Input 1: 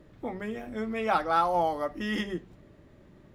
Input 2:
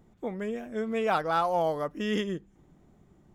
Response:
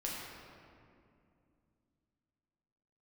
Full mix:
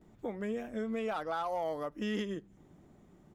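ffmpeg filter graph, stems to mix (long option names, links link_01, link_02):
-filter_complex "[0:a]lowshelf=frequency=390:gain=11.5,volume=-18.5dB[link_01];[1:a]highpass=frequency=160:width=0.5412,highpass=frequency=160:width=1.3066,asoftclip=type=tanh:threshold=-17dB,volume=-1,adelay=14,volume=0.5dB[link_02];[link_01][link_02]amix=inputs=2:normalize=0,alimiter=level_in=3dB:limit=-24dB:level=0:latency=1:release=473,volume=-3dB"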